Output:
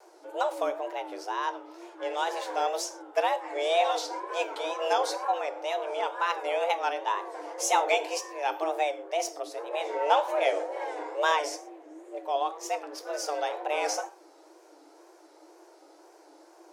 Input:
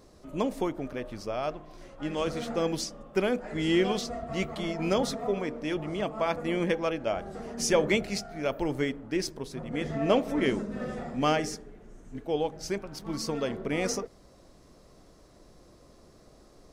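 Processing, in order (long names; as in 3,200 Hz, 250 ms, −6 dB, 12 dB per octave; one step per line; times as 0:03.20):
reverb whose tail is shaped and stops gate 150 ms falling, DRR 10.5 dB
frequency shifter +300 Hz
tape wow and flutter 110 cents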